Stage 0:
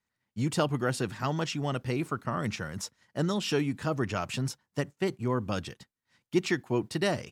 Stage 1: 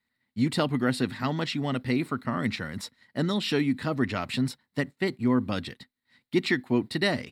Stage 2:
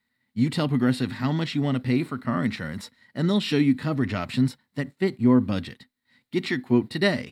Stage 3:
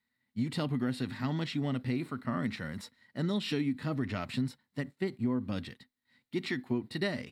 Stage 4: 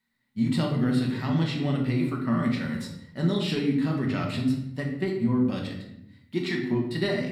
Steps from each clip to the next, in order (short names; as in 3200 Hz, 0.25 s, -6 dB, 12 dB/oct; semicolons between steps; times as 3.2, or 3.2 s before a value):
thirty-one-band EQ 250 Hz +11 dB, 2000 Hz +9 dB, 4000 Hz +11 dB, 6300 Hz -11 dB
harmonic-percussive split percussive -9 dB; gain +6 dB
compressor 5:1, threshold -21 dBFS, peak gain reduction 7.5 dB; gain -6.5 dB
shoebox room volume 230 m³, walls mixed, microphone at 1.1 m; gain +2.5 dB